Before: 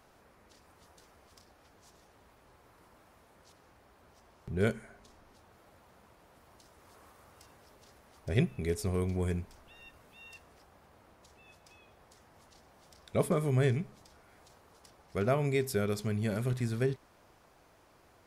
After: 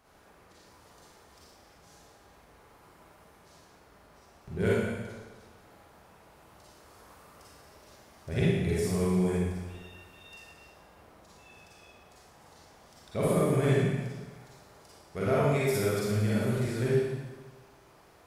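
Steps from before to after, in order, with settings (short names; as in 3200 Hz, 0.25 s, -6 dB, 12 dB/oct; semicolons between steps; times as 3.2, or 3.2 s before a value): one diode to ground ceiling -14 dBFS; Schroeder reverb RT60 1.3 s, DRR -7.5 dB; gain -3.5 dB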